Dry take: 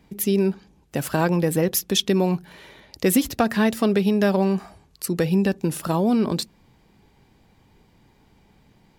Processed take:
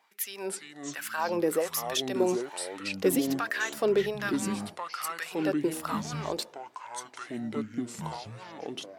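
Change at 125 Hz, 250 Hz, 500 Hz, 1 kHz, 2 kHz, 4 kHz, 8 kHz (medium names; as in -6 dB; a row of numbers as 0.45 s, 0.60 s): -14.5 dB, -10.0 dB, -6.0 dB, -5.0 dB, -2.5 dB, -6.5 dB, -5.5 dB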